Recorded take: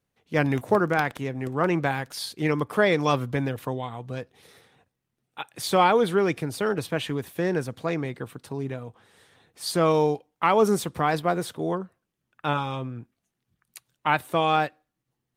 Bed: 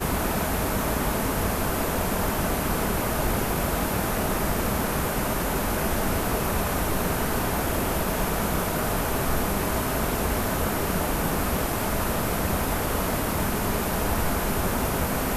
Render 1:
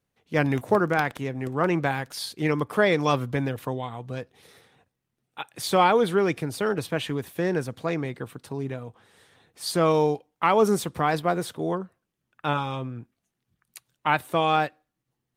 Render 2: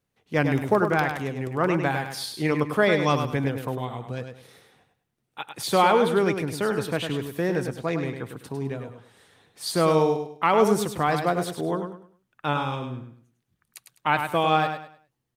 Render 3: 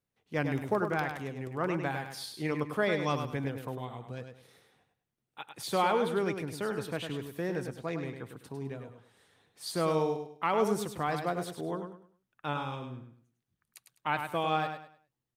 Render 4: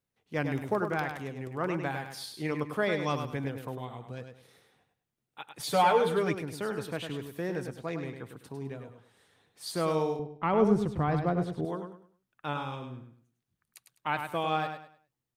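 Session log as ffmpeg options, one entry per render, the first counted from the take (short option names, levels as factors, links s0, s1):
-af anull
-af "aecho=1:1:102|204|306|408:0.447|0.13|0.0376|0.0109"
-af "volume=0.376"
-filter_complex "[0:a]asettb=1/sr,asplit=3[s0][s1][s2];[s0]atrim=end=5.594[s3];[s1]atrim=start=5.59:end=6.35,asetpts=PTS-STARTPTS,afade=t=in:d=0.004:c=qsin,afade=t=out:st=0.756:d=0.004:c=qsin,aecho=1:1:6.8:0.99,atrim=end_sample=33516[s4];[s2]atrim=start=6.346[s5];[s3][s4]acrossfade=d=0.004:c1=hsin:c2=qsin[s6];[s6][s5]acrossfade=d=0.004:c1=qsin:c2=hsin,asettb=1/sr,asplit=3[s7][s8][s9];[s7]atrim=end=10.194[s10];[s8]atrim=start=10.19:end=11.65,asetpts=PTS-STARTPTS,afade=t=in:d=0.004:c=qsin,afade=t=out:st=1.456:d=0.004:c=qsin,aemphasis=mode=reproduction:type=riaa[s11];[s9]atrim=start=11.646[s12];[s10][s11]acrossfade=d=0.004:c1=hsin:c2=qsin[s13];[s13][s12]acrossfade=d=0.004:c1=qsin:c2=hsin"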